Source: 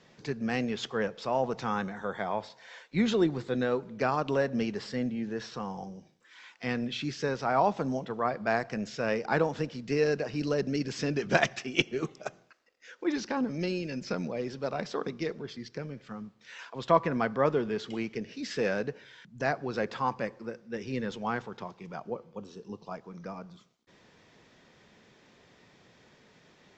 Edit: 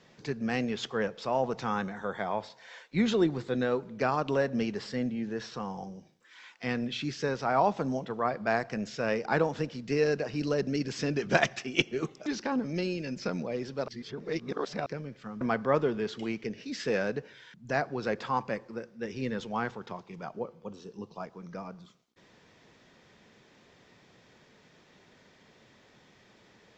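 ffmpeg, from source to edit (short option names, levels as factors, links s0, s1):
-filter_complex "[0:a]asplit=5[s0][s1][s2][s3][s4];[s0]atrim=end=12.262[s5];[s1]atrim=start=13.108:end=14.732[s6];[s2]atrim=start=14.728:end=15.712,asetpts=PTS-STARTPTS,areverse[s7];[s3]atrim=start=15.708:end=16.262[s8];[s4]atrim=start=17.118[s9];[s5][s6]acrossfade=d=0.004:c1=hsin:c2=hsin[s10];[s10][s7]acrossfade=d=0.004:c1=hsin:c2=hsin[s11];[s11][s8]acrossfade=d=0.004:c1=hsin:c2=hsin[s12];[s12][s9]acrossfade=d=0.004:c1=hsin:c2=hsin"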